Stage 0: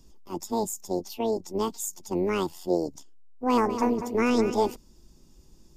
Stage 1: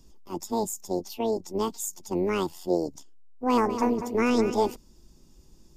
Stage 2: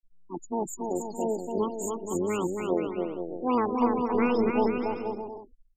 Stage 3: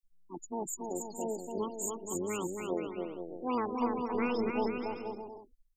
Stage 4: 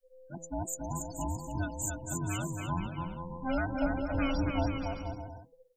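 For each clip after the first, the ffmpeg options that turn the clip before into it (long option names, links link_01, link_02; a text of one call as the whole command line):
ffmpeg -i in.wav -af anull out.wav
ffmpeg -i in.wav -filter_complex "[0:a]afftfilt=real='re*gte(hypot(re,im),0.0447)':imag='im*gte(hypot(re,im),0.0447)':win_size=1024:overlap=0.75,asplit=2[link_01][link_02];[link_02]aecho=0:1:280|476|613.2|709.2|776.5:0.631|0.398|0.251|0.158|0.1[link_03];[link_01][link_03]amix=inputs=2:normalize=0,volume=-2.5dB" out.wav
ffmpeg -i in.wav -af "highshelf=frequency=3100:gain=9.5,volume=-7.5dB" out.wav
ffmpeg -i in.wav -af "afftfilt=real='real(if(between(b,1,1008),(2*floor((b-1)/24)+1)*24-b,b),0)':imag='imag(if(between(b,1,1008),(2*floor((b-1)/24)+1)*24-b,b),0)*if(between(b,1,1008),-1,1)':win_size=2048:overlap=0.75,bandreject=frequency=164.2:width_type=h:width=4,bandreject=frequency=328.4:width_type=h:width=4,bandreject=frequency=492.6:width_type=h:width=4,bandreject=frequency=656.8:width_type=h:width=4,bandreject=frequency=821:width_type=h:width=4,bandreject=frequency=985.2:width_type=h:width=4,bandreject=frequency=1149.4:width_type=h:width=4,volume=1.5dB" out.wav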